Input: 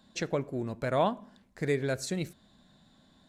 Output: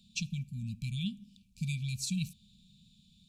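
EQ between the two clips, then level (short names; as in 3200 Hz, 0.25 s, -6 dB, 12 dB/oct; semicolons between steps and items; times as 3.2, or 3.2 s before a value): brick-wall FIR band-stop 230–2300 Hz; +1.5 dB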